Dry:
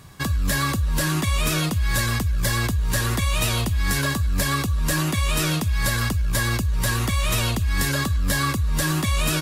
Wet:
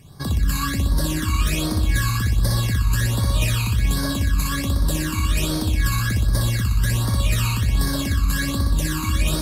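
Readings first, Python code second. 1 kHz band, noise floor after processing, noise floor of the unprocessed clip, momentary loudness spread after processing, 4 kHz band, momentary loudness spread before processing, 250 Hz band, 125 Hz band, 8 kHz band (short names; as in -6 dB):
-2.5 dB, -25 dBFS, -25 dBFS, 2 LU, -1.0 dB, 1 LU, +1.0 dB, +2.5 dB, -1.5 dB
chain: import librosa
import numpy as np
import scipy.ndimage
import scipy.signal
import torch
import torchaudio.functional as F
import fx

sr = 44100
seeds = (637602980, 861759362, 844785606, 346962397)

y = fx.room_flutter(x, sr, wall_m=10.5, rt60_s=1.2)
y = fx.phaser_stages(y, sr, stages=12, low_hz=570.0, high_hz=2600.0, hz=1.3, feedback_pct=25)
y = F.gain(torch.from_numpy(y), -1.5).numpy()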